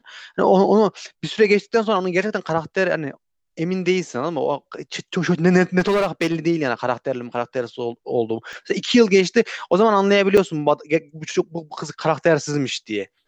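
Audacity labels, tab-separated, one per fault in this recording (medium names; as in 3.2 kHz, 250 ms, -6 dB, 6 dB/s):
5.790000	6.360000	clipped -15 dBFS
8.530000	8.530000	pop -24 dBFS
10.370000	10.380000	dropout 5.6 ms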